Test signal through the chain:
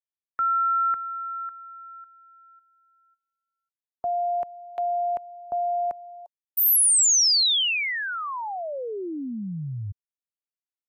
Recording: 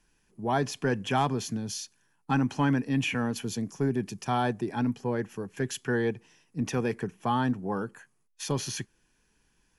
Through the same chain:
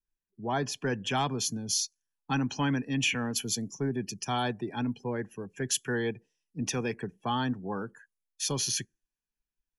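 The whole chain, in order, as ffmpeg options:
ffmpeg -i in.wav -filter_complex "[0:a]afftdn=noise_reduction=25:noise_floor=-48,acrossover=split=230|1300|3200[link_01][link_02][link_03][link_04];[link_04]dynaudnorm=framelen=110:gausssize=21:maxgain=9dB[link_05];[link_01][link_02][link_03][link_05]amix=inputs=4:normalize=0,adynamicequalizer=threshold=0.0112:dfrequency=1900:dqfactor=0.7:tfrequency=1900:tqfactor=0.7:attack=5:release=100:ratio=0.375:range=2:mode=boostabove:tftype=highshelf,volume=-3.5dB" out.wav

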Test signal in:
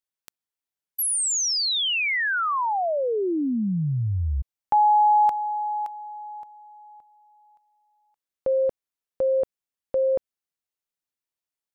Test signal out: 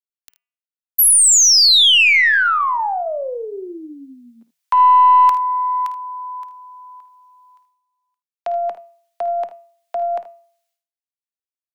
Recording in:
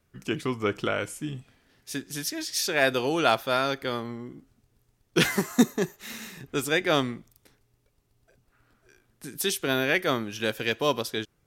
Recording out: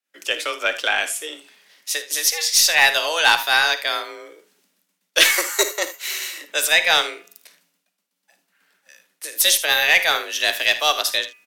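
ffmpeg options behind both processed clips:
ffmpeg -i in.wav -filter_complex "[0:a]agate=range=-25dB:threshold=-57dB:ratio=3:release=491:detection=peak,bass=frequency=250:gain=-8,treble=frequency=4000:gain=-3,bandreject=frequency=261.2:width_type=h:width=4,bandreject=frequency=522.4:width_type=h:width=4,bandreject=frequency=783.6:width_type=h:width=4,bandreject=frequency=1044.8:width_type=h:width=4,bandreject=frequency=1306:width_type=h:width=4,bandreject=frequency=1567.2:width_type=h:width=4,bandreject=frequency=1828.4:width_type=h:width=4,bandreject=frequency=2089.6:width_type=h:width=4,bandreject=frequency=2350.8:width_type=h:width=4,bandreject=frequency=2612:width_type=h:width=4,bandreject=frequency=2873.2:width_type=h:width=4,acrossover=split=120|1600[link_01][link_02][link_03];[link_01]acompressor=threshold=-53dB:ratio=6:release=274[link_04];[link_04][link_02][link_03]amix=inputs=3:normalize=0,tiltshelf=frequency=1100:gain=-9,acontrast=68,afreqshift=160,aeval=exprs='1.19*(cos(1*acos(clip(val(0)/1.19,-1,1)))-cos(1*PI/2))+0.0531*(cos(2*acos(clip(val(0)/1.19,-1,1)))-cos(2*PI/2))+0.0944*(cos(5*acos(clip(val(0)/1.19,-1,1)))-cos(5*PI/2))+0.0168*(cos(7*acos(clip(val(0)/1.19,-1,1)))-cos(7*PI/2))+0.0168*(cos(8*acos(clip(val(0)/1.19,-1,1)))-cos(8*PI/2))':channel_layout=same,asplit=2[link_05][link_06];[link_06]aecho=0:1:53|78:0.2|0.158[link_07];[link_05][link_07]amix=inputs=2:normalize=0,volume=-1dB" out.wav

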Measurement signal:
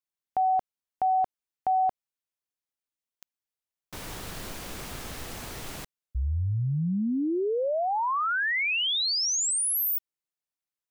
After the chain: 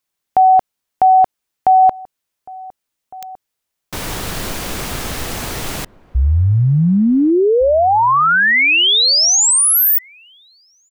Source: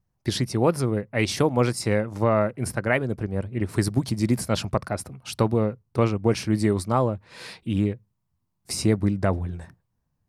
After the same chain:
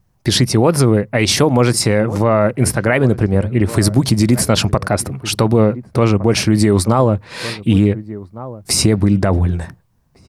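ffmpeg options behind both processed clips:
ffmpeg -i in.wav -filter_complex "[0:a]asplit=2[link_01][link_02];[link_02]adelay=1458,volume=-21dB,highshelf=frequency=4000:gain=-32.8[link_03];[link_01][link_03]amix=inputs=2:normalize=0,alimiter=level_in=16.5dB:limit=-1dB:release=50:level=0:latency=1,volume=-2dB" out.wav

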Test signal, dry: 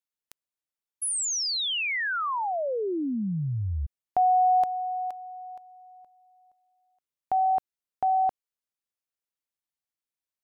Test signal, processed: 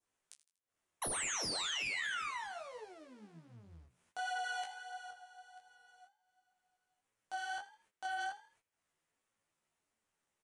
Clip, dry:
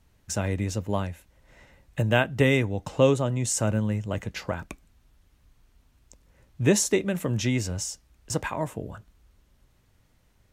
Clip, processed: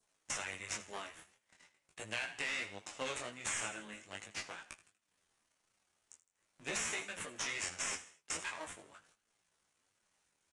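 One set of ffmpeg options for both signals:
ffmpeg -i in.wav -filter_complex "[0:a]aeval=exprs='if(lt(val(0),0),0.251*val(0),val(0))':channel_layout=same,agate=range=-28dB:threshold=-52dB:ratio=16:release=175:detection=rms,aderivative,asplit=2[link_01][link_02];[link_02]acrusher=samples=9:mix=1:aa=0.000001,volume=-5dB[link_03];[link_01][link_03]amix=inputs=2:normalize=0,adynamicequalizer=threshold=0.00251:dfrequency=2200:dqfactor=1:tfrequency=2200:tqfactor=1:attack=5:release=100:ratio=0.375:range=3:mode=boostabove:tftype=bell,acompressor=mode=upward:threshold=-52dB:ratio=2.5:attack=1.7:release=202:knee=2.83:detection=peak,asplit=4[link_04][link_05][link_06][link_07];[link_05]adelay=80,afreqshift=52,volume=-16dB[link_08];[link_06]adelay=160,afreqshift=104,volume=-24.2dB[link_09];[link_07]adelay=240,afreqshift=156,volume=-32.4dB[link_10];[link_04][link_08][link_09][link_10]amix=inputs=4:normalize=0,flanger=delay=18:depth=7.2:speed=0.43,aresample=22050,aresample=44100,flanger=delay=8.8:depth=5.4:regen=34:speed=1.4:shape=triangular,acompressor=threshold=-45dB:ratio=16:attack=17:release=24:knee=1:detection=rms,volume=7.5dB" out.wav

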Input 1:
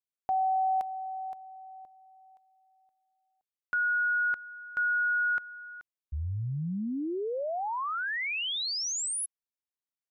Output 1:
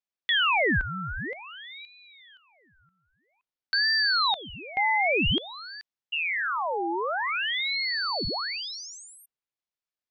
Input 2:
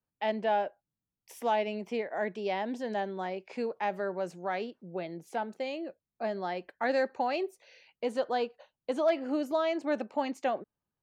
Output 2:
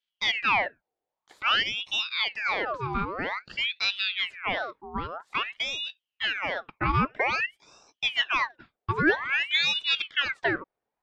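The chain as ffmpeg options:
ffmpeg -i in.wav -af "lowpass=3000,acontrast=79,aeval=exprs='val(0)*sin(2*PI*1900*n/s+1900*0.7/0.51*sin(2*PI*0.51*n/s))':channel_layout=same" out.wav

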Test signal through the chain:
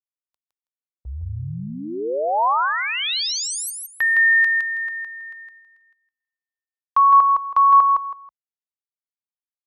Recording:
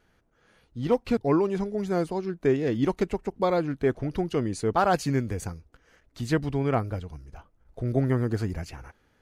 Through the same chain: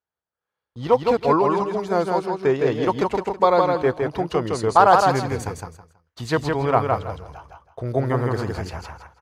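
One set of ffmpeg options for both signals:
ffmpeg -i in.wav -af "highpass=frequency=52:width=0.5412,highpass=frequency=52:width=1.3066,agate=range=-31dB:threshold=-52dB:ratio=16:detection=peak,equalizer=frequency=250:width_type=o:width=1:gain=-5,equalizer=frequency=500:width_type=o:width=1:gain=4,equalizer=frequency=1000:width_type=o:width=1:gain=11,equalizer=frequency=4000:width_type=o:width=1:gain=5,aecho=1:1:162|324|486:0.668|0.154|0.0354,volume=1dB" out.wav

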